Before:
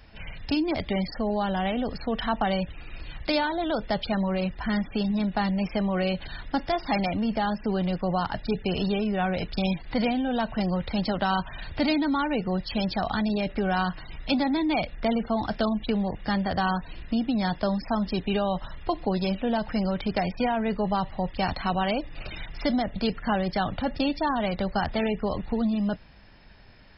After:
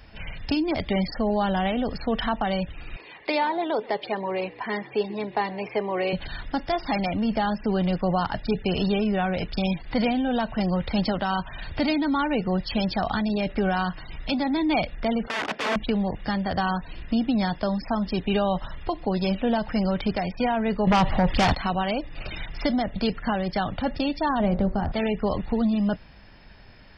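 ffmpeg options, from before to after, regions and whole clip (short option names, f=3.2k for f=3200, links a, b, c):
-filter_complex "[0:a]asettb=1/sr,asplit=3[a][b][c];[a]atrim=end=2.964[d];[b]atrim=start=2.96:end=6.13,asetpts=PTS-STARTPTS,afade=t=in:d=0.004:c=qsin,afade=t=out:st=3.166:d=0.004:c=qsin,highpass=410,equalizer=f=420:t=q:w=4:g=10,equalizer=f=600:t=q:w=4:g=-3,equalizer=f=980:t=q:w=4:g=4,equalizer=f=1.4k:t=q:w=4:g=-9,equalizer=f=2.1k:t=q:w=4:g=3,equalizer=f=3.2k:t=q:w=4:g=-6,lowpass=f=4k:w=0.5412,lowpass=f=4k:w=1.3066,asplit=3[e][f][g];[f]adelay=127,afreqshift=-71,volume=-20.5dB[h];[g]adelay=254,afreqshift=-142,volume=-30.7dB[i];[e][h][i]amix=inputs=3:normalize=0,atrim=end_sample=139797[j];[c]atrim=start=6.126[k];[d][j]acrossfade=d=0.004:c1=hsin:c2=qsin[l];[l][k]acrossfade=d=0.004:c1=qsin:c2=hsin,asettb=1/sr,asplit=3[m][n][o];[m]atrim=end=15.274[p];[n]atrim=start=15.27:end=15.76,asetpts=PTS-STARTPTS,afade=t=in:d=0.004:c=qsin,afade=t=out:st=0.486:d=0.004:c=qsin,equalizer=f=410:w=0.76:g=5.5,aeval=exprs='(mod(12.6*val(0)+1,2)-1)/12.6':c=same,highpass=280,lowpass=3.2k[q];[o]atrim=start=15.756[r];[p][q]acrossfade=d=0.004:c1=hsin:c2=qsin[s];[s][r]acrossfade=d=0.004:c1=qsin:c2=hsin,asettb=1/sr,asplit=3[t][u][v];[t]atrim=end=20.874[w];[u]atrim=start=20.87:end=21.55,asetpts=PTS-STARTPTS,afade=t=in:d=0.004:c=qsin,afade=t=out:st=0.676:d=0.004:c=qsin,aeval=exprs='0.251*sin(PI/2*2.82*val(0)/0.251)':c=same,acompressor=threshold=-20dB:ratio=2.5:attack=3.2:release=140:knee=1:detection=peak[x];[v]atrim=start=21.546[y];[w][x]acrossfade=d=0.004:c1=hsin:c2=qsin[z];[z][y]acrossfade=d=0.004:c1=qsin:c2=hsin,asettb=1/sr,asplit=3[aa][ab][ac];[aa]atrim=end=24.404[ad];[ab]atrim=start=24.4:end=24.92,asetpts=PTS-STARTPTS,afade=t=in:d=0.004:c=qsin,afade=t=out:st=0.516:d=0.004:c=qsin,lowpass=f=3.3k:p=1,tiltshelf=f=850:g=7.5,bandreject=f=54.24:t=h:w=4,bandreject=f=108.48:t=h:w=4,bandreject=f=162.72:t=h:w=4,bandreject=f=216.96:t=h:w=4,bandreject=f=271.2:t=h:w=4,bandreject=f=325.44:t=h:w=4,bandreject=f=379.68:t=h:w=4,bandreject=f=433.92:t=h:w=4,bandreject=f=488.16:t=h:w=4,bandreject=f=542.4:t=h:w=4,bandreject=f=596.64:t=h:w=4,bandreject=f=650.88:t=h:w=4,bandreject=f=705.12:t=h:w=4,bandreject=f=759.36:t=h:w=4,bandreject=f=813.6:t=h:w=4,bandreject=f=867.84:t=h:w=4,bandreject=f=922.08:t=h:w=4,bandreject=f=976.32:t=h:w=4,bandreject=f=1.03056k:t=h:w=4,bandreject=f=1.0848k:t=h:w=4,bandreject=f=1.13904k:t=h:w=4,bandreject=f=1.19328k:t=h:w=4,bandreject=f=1.24752k:t=h:w=4,bandreject=f=1.30176k:t=h:w=4,bandreject=f=1.356k:t=h:w=4,bandreject=f=1.41024k:t=h:w=4,bandreject=f=1.46448k:t=h:w=4,bandreject=f=1.51872k:t=h:w=4,bandreject=f=1.57296k:t=h:w=4,bandreject=f=1.6272k:t=h:w=4,bandreject=f=1.68144k:t=h:w=4,bandreject=f=1.73568k:t=h:w=4,bandreject=f=1.78992k:t=h:w=4,bandreject=f=1.84416k:t=h:w=4,bandreject=f=1.8984k:t=h:w=4[ae];[ac]atrim=start=24.916[af];[ad][ae]acrossfade=d=0.004:c1=hsin:c2=qsin[ag];[ag][af]acrossfade=d=0.004:c1=qsin:c2=hsin,bandreject=f=4k:w=18,alimiter=limit=-16.5dB:level=0:latency=1:release=492,volume=3dB"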